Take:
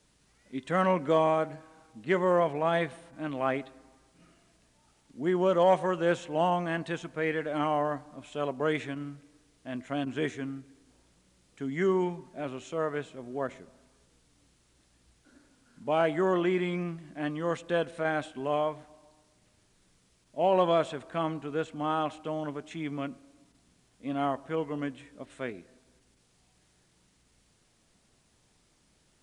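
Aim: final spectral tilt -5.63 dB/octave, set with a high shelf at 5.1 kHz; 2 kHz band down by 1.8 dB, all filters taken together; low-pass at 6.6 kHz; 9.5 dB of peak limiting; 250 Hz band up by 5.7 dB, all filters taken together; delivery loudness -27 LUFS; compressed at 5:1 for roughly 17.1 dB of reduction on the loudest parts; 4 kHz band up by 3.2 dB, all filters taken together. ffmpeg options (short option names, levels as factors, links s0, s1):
-af "lowpass=6600,equalizer=f=250:t=o:g=8.5,equalizer=f=2000:t=o:g=-4,equalizer=f=4000:t=o:g=5,highshelf=f=5100:g=4,acompressor=threshold=0.0126:ratio=5,volume=7.94,alimiter=limit=0.133:level=0:latency=1"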